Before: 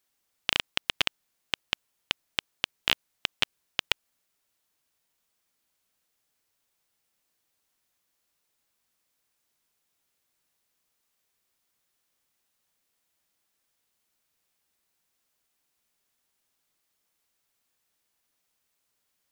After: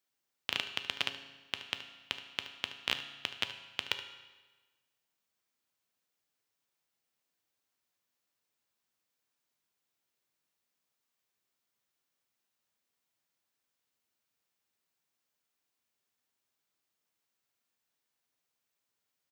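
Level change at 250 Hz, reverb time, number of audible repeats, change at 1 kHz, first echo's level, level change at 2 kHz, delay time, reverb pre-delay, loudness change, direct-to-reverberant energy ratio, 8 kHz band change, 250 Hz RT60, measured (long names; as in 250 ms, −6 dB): −6.0 dB, 1.3 s, 1, −6.0 dB, −14.0 dB, −6.5 dB, 74 ms, 7 ms, −6.5 dB, 6.5 dB, −8.0 dB, 1.3 s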